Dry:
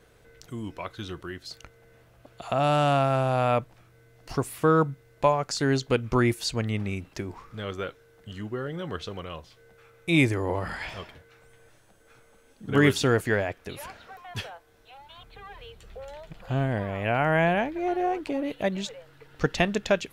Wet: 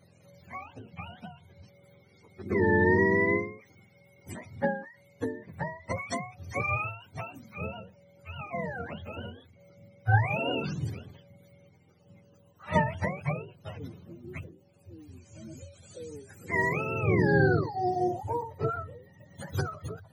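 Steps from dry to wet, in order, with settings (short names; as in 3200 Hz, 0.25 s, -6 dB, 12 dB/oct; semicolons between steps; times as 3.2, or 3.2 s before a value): spectrum mirrored in octaves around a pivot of 510 Hz; dynamic EQ 5200 Hz, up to +6 dB, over -50 dBFS, Q 0.93; ending taper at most 110 dB/s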